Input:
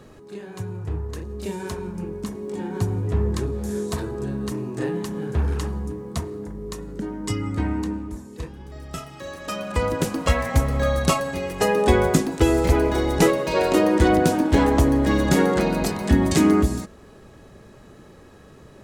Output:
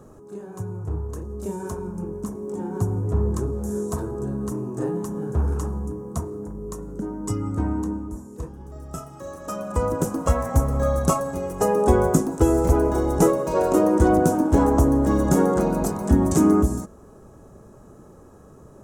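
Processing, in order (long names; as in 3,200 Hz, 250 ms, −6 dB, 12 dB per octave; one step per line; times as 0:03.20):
flat-topped bell 2,900 Hz −15.5 dB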